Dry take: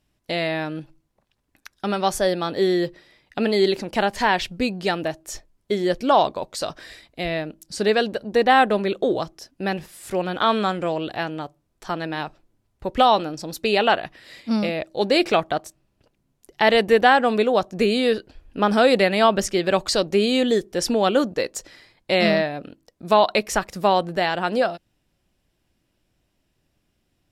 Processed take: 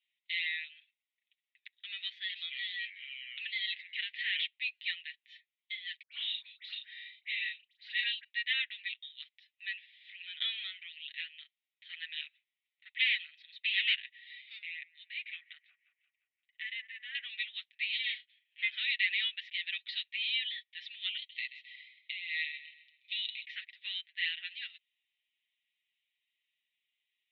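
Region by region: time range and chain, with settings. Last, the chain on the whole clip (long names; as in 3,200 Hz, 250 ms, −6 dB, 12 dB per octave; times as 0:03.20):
0:02.07–0:04.44: delay with pitch and tempo change per echo 224 ms, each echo −6 semitones, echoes 2, each echo −6 dB + high-pass filter 780 Hz
0:06.02–0:08.24: double-tracking delay 37 ms −4 dB + all-pass dispersion highs, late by 105 ms, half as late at 1,200 Hz
0:11.93–0:13.95: high-pass filter 210 Hz 24 dB per octave + parametric band 1,500 Hz +4 dB 1.9 octaves + saturating transformer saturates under 2,700 Hz
0:14.58–0:17.15: delay with a band-pass on its return 175 ms, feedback 50%, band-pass 640 Hz, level −11 dB + downward compressor 4 to 1, threshold −21 dBFS + low-pass filter 2,300 Hz
0:17.92–0:18.69: lower of the sound and its delayed copy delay 7.7 ms + double-tracking delay 31 ms −13 dB
0:21.16–0:23.45: Chebyshev high-pass filter 2,000 Hz, order 6 + compressor whose output falls as the input rises −33 dBFS + repeating echo 131 ms, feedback 41%, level −13 dB
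whole clip: Chebyshev band-pass filter 1,900–3,800 Hz, order 4; comb filter 6.8 ms, depth 65%; level −5 dB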